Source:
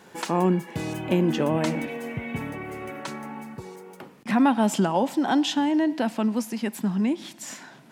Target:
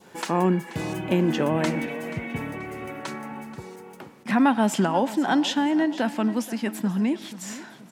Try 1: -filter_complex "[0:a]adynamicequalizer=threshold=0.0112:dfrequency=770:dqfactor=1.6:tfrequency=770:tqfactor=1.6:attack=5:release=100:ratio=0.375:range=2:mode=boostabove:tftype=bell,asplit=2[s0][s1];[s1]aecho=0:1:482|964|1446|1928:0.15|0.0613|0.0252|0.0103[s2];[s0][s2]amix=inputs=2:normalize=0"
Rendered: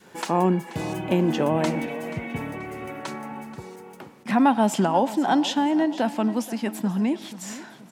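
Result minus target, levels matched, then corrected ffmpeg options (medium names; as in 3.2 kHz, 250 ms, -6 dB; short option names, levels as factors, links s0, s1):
2 kHz band -3.0 dB
-filter_complex "[0:a]adynamicequalizer=threshold=0.0112:dfrequency=1700:dqfactor=1.6:tfrequency=1700:tqfactor=1.6:attack=5:release=100:ratio=0.375:range=2:mode=boostabove:tftype=bell,asplit=2[s0][s1];[s1]aecho=0:1:482|964|1446|1928:0.15|0.0613|0.0252|0.0103[s2];[s0][s2]amix=inputs=2:normalize=0"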